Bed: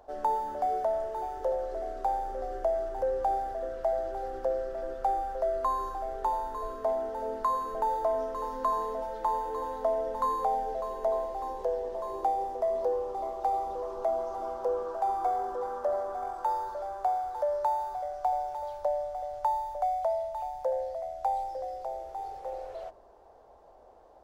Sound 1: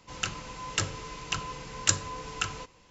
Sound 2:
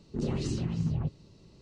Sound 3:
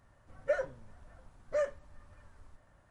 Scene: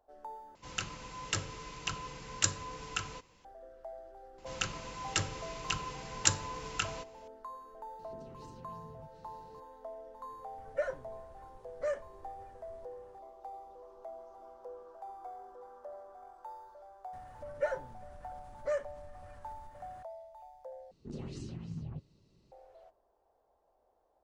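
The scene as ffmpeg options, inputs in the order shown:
-filter_complex "[1:a]asplit=2[a][b];[2:a]asplit=2[c][d];[3:a]asplit=2[e][f];[0:a]volume=-17.5dB[g];[c]acompressor=threshold=-45dB:ratio=6:attack=3.2:release=140:knee=1:detection=peak[h];[f]acompressor=mode=upward:threshold=-42dB:ratio=2.5:attack=3.2:release=140:knee=2.83:detection=peak[i];[g]asplit=3[j][k][l];[j]atrim=end=0.554[m];[a]atrim=end=2.9,asetpts=PTS-STARTPTS,volume=-5dB[n];[k]atrim=start=3.446:end=20.914[o];[d]atrim=end=1.61,asetpts=PTS-STARTPTS,volume=-11.5dB[p];[l]atrim=start=22.516[q];[b]atrim=end=2.9,asetpts=PTS-STARTPTS,volume=-3dB,afade=t=in:d=0.004:c=hsin,afade=t=out:st=2.896:d=0.004:c=hsin,adelay=4380[r];[h]atrim=end=1.61,asetpts=PTS-STARTPTS,volume=-5.5dB,afade=t=in:d=0.004:c=hsin,afade=t=out:st=1.606:d=0.004:c=hsin,adelay=7990[s];[e]atrim=end=2.9,asetpts=PTS-STARTPTS,volume=-3dB,afade=t=in:d=0.004:c=hsin,afade=t=out:st=2.896:d=0.004:c=hsin,adelay=10290[t];[i]atrim=end=2.9,asetpts=PTS-STARTPTS,volume=-2dB,afade=t=in:d=0.004:c=hsin,afade=t=out:st=2.896:d=0.004:c=hsin,adelay=17130[u];[m][n]acrossfade=d=0.004:c1=hsin:c2=hsin[v];[v][o]acrossfade=d=0.004:c1=hsin:c2=hsin[w];[w][p]acrossfade=d=0.004:c1=hsin:c2=hsin[x];[x][q]acrossfade=d=0.004:c1=hsin:c2=hsin[y];[y][r][s][t][u]amix=inputs=5:normalize=0"

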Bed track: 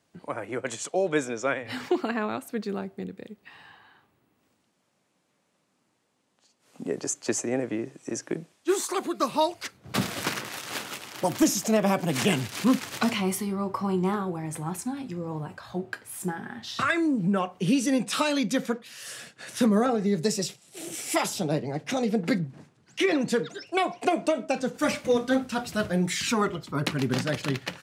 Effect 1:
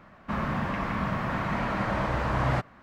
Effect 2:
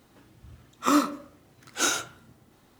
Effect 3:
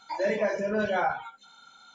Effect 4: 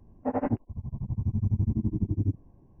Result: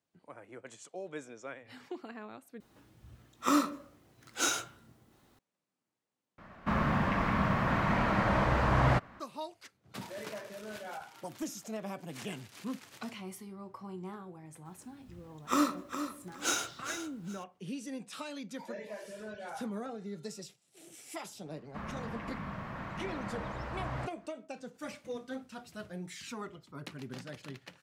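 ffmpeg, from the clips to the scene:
-filter_complex "[2:a]asplit=2[a][b];[1:a]asplit=2[c][d];[3:a]asplit=2[e][f];[0:a]volume=-17dB[g];[a]asplit=2[h][i];[i]adelay=18,volume=-13dB[j];[h][j]amix=inputs=2:normalize=0[k];[b]aecho=1:1:412|824|1236:0.335|0.0737|0.0162[l];[g]asplit=3[m][n][o];[m]atrim=end=2.604[p];[k]atrim=end=2.79,asetpts=PTS-STARTPTS,volume=-5.5dB[q];[n]atrim=start=5.386:end=6.384[r];[c]atrim=end=2.82[s];[o]atrim=start=9.196[t];[e]atrim=end=1.94,asetpts=PTS-STARTPTS,volume=-17dB,afade=t=in:d=0.004:c=hsin,afade=t=out:st=1.936:d=0.004:c=hsin,adelay=9910[u];[l]atrim=end=2.79,asetpts=PTS-STARTPTS,volume=-6.5dB,afade=t=in:d=0.004:c=hsin,afade=t=out:st=2.786:d=0.004:c=hsin,adelay=14650[v];[f]atrim=end=1.94,asetpts=PTS-STARTPTS,volume=-17dB,afade=t=in:d=0.004:c=hsin,afade=t=out:st=1.936:d=0.004:c=hsin,adelay=18490[w];[d]atrim=end=2.82,asetpts=PTS-STARTPTS,volume=-12dB,afade=t=in:d=0.004:c=hsin,afade=t=out:st=2.816:d=0.004:c=hsin,adelay=21460[x];[p][q]acrossfade=d=0.004:c1=hsin:c2=hsin[y];[y][r]acrossfade=d=0.004:c1=hsin:c2=hsin[z];[z][s]acrossfade=d=0.004:c1=hsin:c2=hsin[aa];[aa][t]acrossfade=d=0.004:c1=hsin:c2=hsin[ab];[ab][u][v][w][x]amix=inputs=5:normalize=0"

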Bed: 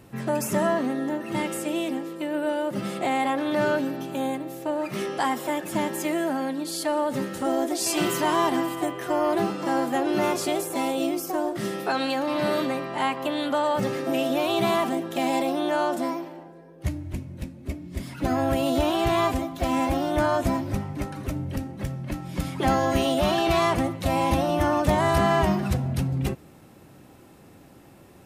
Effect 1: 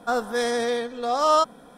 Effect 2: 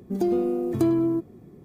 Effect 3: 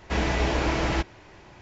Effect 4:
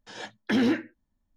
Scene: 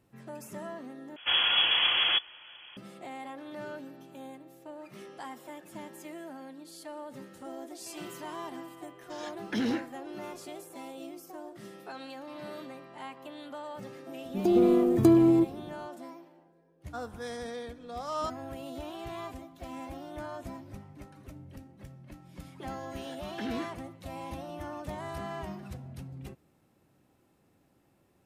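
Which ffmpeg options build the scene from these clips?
-filter_complex "[4:a]asplit=2[a][b];[0:a]volume=-17.5dB[c];[3:a]lowpass=f=2.9k:t=q:w=0.5098,lowpass=f=2.9k:t=q:w=0.6013,lowpass=f=2.9k:t=q:w=0.9,lowpass=f=2.9k:t=q:w=2.563,afreqshift=-3400[d];[a]bass=f=250:g=2,treble=f=4k:g=6[e];[2:a]dynaudnorm=f=110:g=5:m=9.5dB[f];[1:a]equalizer=f=230:t=o:w=0.77:g=3[g];[c]asplit=2[h][i];[h]atrim=end=1.164[j];[d]atrim=end=1.61,asetpts=PTS-STARTPTS,volume=-1dB[k];[i]atrim=start=2.766[l];[e]atrim=end=1.36,asetpts=PTS-STARTPTS,volume=-7.5dB,afade=t=in:d=0.004:c=hsin,afade=t=out:st=1.356:d=0.004:c=hsin,adelay=9030[m];[f]atrim=end=1.64,asetpts=PTS-STARTPTS,volume=-6dB,afade=t=in:d=0.004:c=hsin,afade=t=out:st=1.636:d=0.004:c=hsin,adelay=14240[n];[g]atrim=end=1.77,asetpts=PTS-STARTPTS,volume=-15dB,afade=t=in:d=0.004:c=hsin,afade=t=out:st=1.766:d=0.004:c=hsin,adelay=16860[o];[b]atrim=end=1.36,asetpts=PTS-STARTPTS,volume=-13dB,afade=t=in:d=0.004:c=hsin,afade=t=out:st=1.356:d=0.004:c=hsin,adelay=22890[p];[j][k]acrossfade=d=0.004:c1=hsin:c2=hsin[q];[q][l]acrossfade=d=0.004:c1=hsin:c2=hsin[r];[r][m][n][o][p]amix=inputs=5:normalize=0"

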